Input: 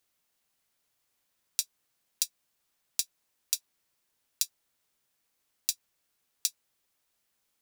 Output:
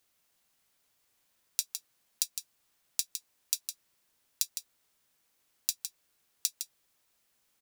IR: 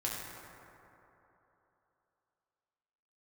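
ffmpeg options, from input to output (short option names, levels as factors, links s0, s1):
-af "acompressor=threshold=0.0398:ratio=6,aecho=1:1:159:0.398,volume=1.41"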